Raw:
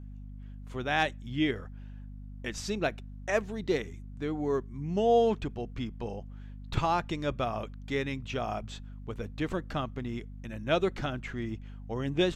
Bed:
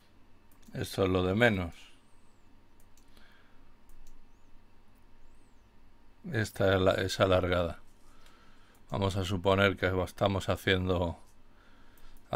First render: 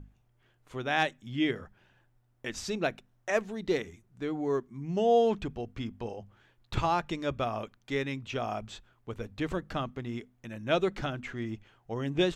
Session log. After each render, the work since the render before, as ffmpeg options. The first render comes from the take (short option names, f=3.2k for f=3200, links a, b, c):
-af "bandreject=f=50:t=h:w=6,bandreject=f=100:t=h:w=6,bandreject=f=150:t=h:w=6,bandreject=f=200:t=h:w=6,bandreject=f=250:t=h:w=6"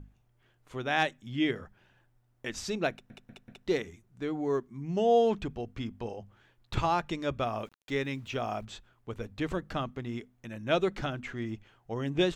-filter_complex "[0:a]asettb=1/sr,asplit=3[a][b][c];[a]atrim=end=7.484[d];[b]atrim=start=7.48:end=8.65,asetpts=PTS-STARTPTS,afade=t=in:d=0.004:c=qsin,afade=t=out:st=1.166:d=0.004:c=qsin,aeval=exprs='val(0)*gte(abs(val(0)),0.00141)':c=same[e];[c]atrim=start=8.646[f];[d][e]acrossfade=d=0.004:c1=hsin:c2=qsin[g];[g][f]acrossfade=d=0.004:c1=qsin:c2=hsin,asplit=5[h][i][j][k][l];[h]atrim=end=3.102[m];[i]atrim=start=2.908:end=3.102[n];[j]atrim=start=2.908:end=3.102[o];[k]atrim=start=2.908:end=3.102[p];[l]atrim=start=3.668[q];[m][n]acrossfade=d=0.004:c1=hsin:c2=hsin[r];[r][o]acrossfade=d=0.004:c1=hsin:c2=hsin[s];[s][p]acrossfade=d=0.004:c1=hsin:c2=hsin[t];[t][q]acrossfade=d=0.004:c1=hsin:c2=hsin"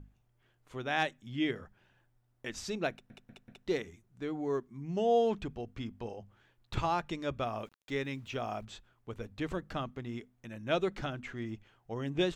-af "volume=-3.5dB"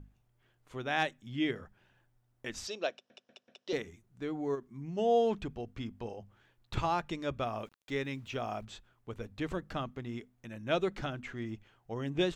-filter_complex "[0:a]asettb=1/sr,asplit=3[a][b][c];[a]atrim=end=2.674[d];[b]atrim=start=2.67:end=3.73,asetpts=PTS-STARTPTS,afade=t=in:d=0.004:c=qsin,afade=t=out:st=1.056:d=0.004:c=qsin,highpass=480,equalizer=f=560:t=q:w=4:g=6,equalizer=f=850:t=q:w=4:g=-5,equalizer=f=1.4k:t=q:w=4:g=-4,equalizer=f=2.1k:t=q:w=4:g=-7,equalizer=f=3.1k:t=q:w=4:g=6,equalizer=f=5.3k:t=q:w=4:g=8,lowpass=f=7k:w=0.5412,lowpass=f=7k:w=1.3066[e];[c]atrim=start=3.726[f];[d][e]acrossfade=d=0.004:c1=hsin:c2=qsin[g];[g][f]acrossfade=d=0.004:c1=qsin:c2=hsin,asplit=3[h][i][j];[h]afade=t=out:st=4.54:d=0.02[k];[i]acompressor=threshold=-36dB:ratio=6:attack=3.2:release=140:knee=1:detection=peak,afade=t=in:st=4.54:d=0.02,afade=t=out:st=4.97:d=0.02[l];[j]afade=t=in:st=4.97:d=0.02[m];[k][l][m]amix=inputs=3:normalize=0"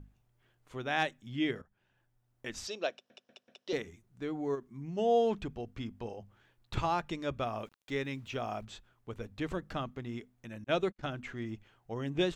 -filter_complex "[0:a]asettb=1/sr,asplit=3[a][b][c];[a]atrim=end=10.644[d];[b]atrim=start=10.64:end=11.09,asetpts=PTS-STARTPTS,afade=t=in:d=0.004:c=qsin,afade=t=out:st=0.446:d=0.004:c=qsin,agate=range=-47dB:threshold=-39dB:ratio=16:release=100:detection=peak[e];[c]atrim=start=11.086[f];[d][e]acrossfade=d=0.004:c1=hsin:c2=qsin[g];[g][f]acrossfade=d=0.004:c1=qsin:c2=hsin,asplit=2[h][i];[h]atrim=end=1.62,asetpts=PTS-STARTPTS,afade=t=out:st=1.616:d=0.004:c=hsin:silence=0.141254[j];[i]atrim=start=1.62,asetpts=PTS-STARTPTS,afade=t=in:d=1.15:c=qsin:silence=0.141254[k];[j][k]concat=n=2:v=0:a=1"